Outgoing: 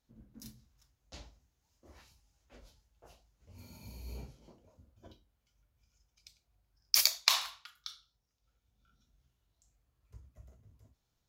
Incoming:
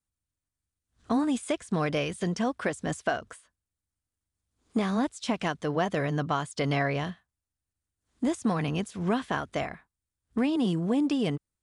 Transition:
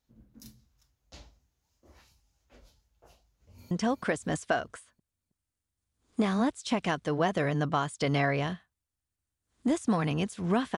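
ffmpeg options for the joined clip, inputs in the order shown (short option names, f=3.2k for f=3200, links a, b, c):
-filter_complex "[0:a]apad=whole_dur=10.77,atrim=end=10.77,atrim=end=3.712[a];[1:a]atrim=start=2.278:end=9.34[b];[a][b]acrossfade=d=0.004:c1=hsin:c2=hsin,asplit=2[c][d];[d]afade=t=in:st=3.27:d=0.01,afade=t=out:st=3.71:d=0.01,aecho=0:1:320|640|960|1280|1600:0.446684|0.178673|0.0714694|0.0285877|0.0114351[e];[c][e]amix=inputs=2:normalize=0"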